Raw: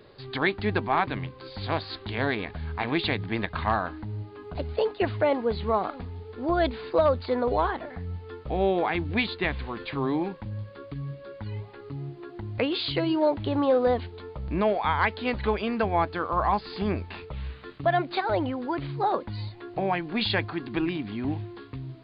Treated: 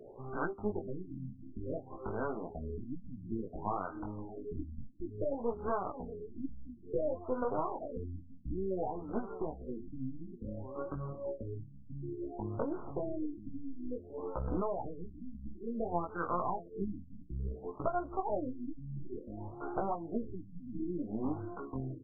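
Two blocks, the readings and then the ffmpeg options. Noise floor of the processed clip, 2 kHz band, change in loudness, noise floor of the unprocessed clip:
-52 dBFS, -20.5 dB, -12.0 dB, -46 dBFS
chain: -filter_complex "[0:a]equalizer=f=94:w=0.63:g=-12.5,acompressor=threshold=0.0141:ratio=6,aeval=exprs='0.0891*(cos(1*acos(clip(val(0)/0.0891,-1,1)))-cos(1*PI/2))+0.0126*(cos(6*acos(clip(val(0)/0.0891,-1,1)))-cos(6*PI/2))':c=same,flanger=delay=16:depth=7.4:speed=0.34,asplit=2[s0][s1];[s1]aecho=0:1:632:0.168[s2];[s0][s2]amix=inputs=2:normalize=0,afftfilt=real='re*lt(b*sr/1024,280*pow(1600/280,0.5+0.5*sin(2*PI*0.57*pts/sr)))':imag='im*lt(b*sr/1024,280*pow(1600/280,0.5+0.5*sin(2*PI*0.57*pts/sr)))':win_size=1024:overlap=0.75,volume=2.24"

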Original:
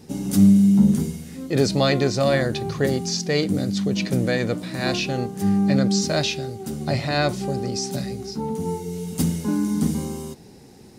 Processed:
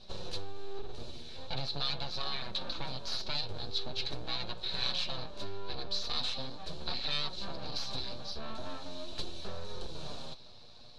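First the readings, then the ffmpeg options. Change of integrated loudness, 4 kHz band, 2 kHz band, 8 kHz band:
-15.5 dB, -4.5 dB, -15.5 dB, -20.5 dB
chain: -af "aeval=exprs='abs(val(0))':c=same,acompressor=threshold=0.0562:ratio=12,bandreject=f=2000:w=7.6,flanger=delay=5.2:depth=3.3:regen=47:speed=0.42:shape=sinusoidal,lowpass=f=4000:t=q:w=8.4,equalizer=f=340:w=1.6:g=-7,volume=0.668"

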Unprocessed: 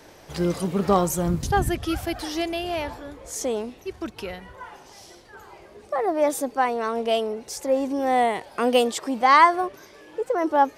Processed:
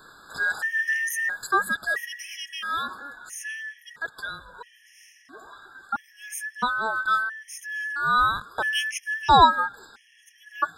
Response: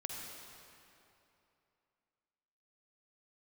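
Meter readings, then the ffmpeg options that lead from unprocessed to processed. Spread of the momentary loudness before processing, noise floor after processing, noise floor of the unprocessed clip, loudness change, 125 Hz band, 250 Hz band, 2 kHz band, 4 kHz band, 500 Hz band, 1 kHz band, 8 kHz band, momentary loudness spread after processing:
15 LU, -57 dBFS, -49 dBFS, -1.5 dB, -10.5 dB, -14.5 dB, +6.5 dB, +1.5 dB, -14.5 dB, -1.5 dB, -3.0 dB, 16 LU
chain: -af "afftfilt=real='real(if(between(b,1,1012),(2*floor((b-1)/92)+1)*92-b,b),0)':imag='imag(if(between(b,1,1012),(2*floor((b-1)/92)+1)*92-b,b),0)*if(between(b,1,1012),-1,1)':win_size=2048:overlap=0.75,afftfilt=real='re*gt(sin(2*PI*0.75*pts/sr)*(1-2*mod(floor(b*sr/1024/1700),2)),0)':imag='im*gt(sin(2*PI*0.75*pts/sr)*(1-2*mod(floor(b*sr/1024/1700),2)),0)':win_size=1024:overlap=0.75"

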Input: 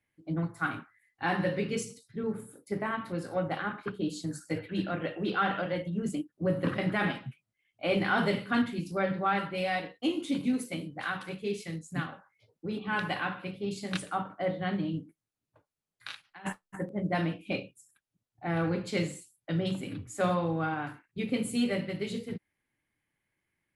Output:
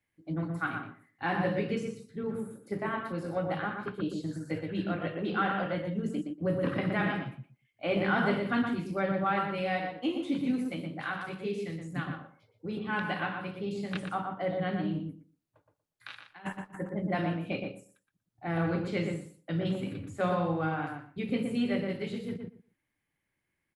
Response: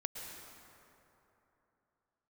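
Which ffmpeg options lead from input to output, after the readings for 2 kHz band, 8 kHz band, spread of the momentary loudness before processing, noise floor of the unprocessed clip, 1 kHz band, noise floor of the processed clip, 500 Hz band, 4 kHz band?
-1.0 dB, under -10 dB, 10 LU, under -85 dBFS, 0.0 dB, -83 dBFS, 0.0 dB, -3.5 dB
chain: -filter_complex "[0:a]asplit=2[s0][s1];[s1]adelay=119,lowpass=f=1500:p=1,volume=0.708,asplit=2[s2][s3];[s3]adelay=119,lowpass=f=1500:p=1,volume=0.18,asplit=2[s4][s5];[s5]adelay=119,lowpass=f=1500:p=1,volume=0.18[s6];[s0][s2][s4][s6]amix=inputs=4:normalize=0,acrossover=split=3600[s7][s8];[s8]acompressor=threshold=0.00178:ratio=4:attack=1:release=60[s9];[s7][s9]amix=inputs=2:normalize=0,volume=0.841"

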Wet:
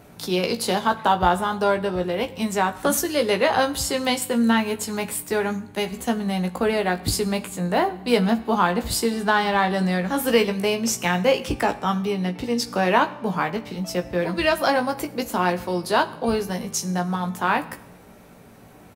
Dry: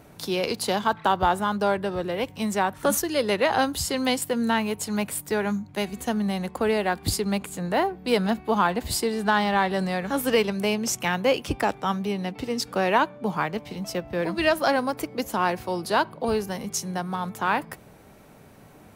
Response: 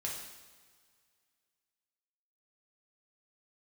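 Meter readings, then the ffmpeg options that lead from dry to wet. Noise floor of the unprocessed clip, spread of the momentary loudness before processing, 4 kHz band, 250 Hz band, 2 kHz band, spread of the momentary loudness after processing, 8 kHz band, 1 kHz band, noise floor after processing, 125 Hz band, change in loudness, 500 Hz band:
-50 dBFS, 7 LU, +2.5 dB, +3.0 dB, +2.5 dB, 7 LU, +2.5 dB, +2.5 dB, -47 dBFS, +4.0 dB, +2.5 dB, +2.5 dB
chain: -filter_complex "[0:a]asplit=2[s0][s1];[s1]adelay=17,volume=0.501[s2];[s0][s2]amix=inputs=2:normalize=0,asplit=2[s3][s4];[1:a]atrim=start_sample=2205,asetrate=61740,aresample=44100[s5];[s4][s5]afir=irnorm=-1:irlink=0,volume=0.376[s6];[s3][s6]amix=inputs=2:normalize=0"

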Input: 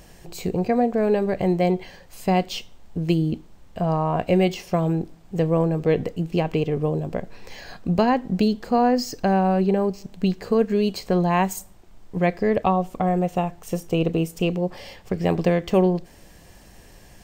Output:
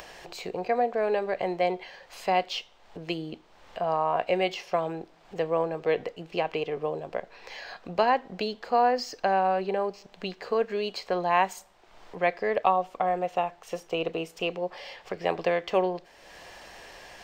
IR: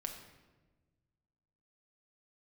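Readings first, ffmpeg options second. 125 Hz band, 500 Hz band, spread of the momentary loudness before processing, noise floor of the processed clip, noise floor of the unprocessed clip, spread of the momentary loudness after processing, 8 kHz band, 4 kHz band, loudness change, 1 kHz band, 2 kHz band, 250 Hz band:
-18.5 dB, -4.5 dB, 11 LU, -57 dBFS, -49 dBFS, 18 LU, -8.5 dB, -1.5 dB, -5.5 dB, -1.0 dB, 0.0 dB, -14.5 dB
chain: -filter_complex "[0:a]acrossover=split=460 5300:gain=0.1 1 0.158[s0][s1][s2];[s0][s1][s2]amix=inputs=3:normalize=0,acompressor=mode=upward:threshold=0.0141:ratio=2.5"

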